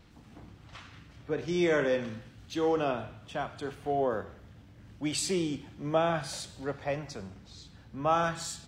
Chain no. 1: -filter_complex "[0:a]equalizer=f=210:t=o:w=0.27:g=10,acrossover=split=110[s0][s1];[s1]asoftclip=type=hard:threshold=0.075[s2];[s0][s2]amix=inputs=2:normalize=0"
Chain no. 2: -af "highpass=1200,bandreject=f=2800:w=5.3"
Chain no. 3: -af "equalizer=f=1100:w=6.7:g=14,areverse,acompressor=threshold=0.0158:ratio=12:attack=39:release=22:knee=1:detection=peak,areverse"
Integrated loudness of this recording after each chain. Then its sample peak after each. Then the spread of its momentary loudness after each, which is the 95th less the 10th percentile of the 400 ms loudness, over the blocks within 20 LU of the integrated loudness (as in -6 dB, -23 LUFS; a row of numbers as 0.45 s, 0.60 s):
-32.0 LUFS, -38.5 LUFS, -35.5 LUFS; -21.5 dBFS, -20.0 dBFS, -20.5 dBFS; 21 LU, 20 LU, 18 LU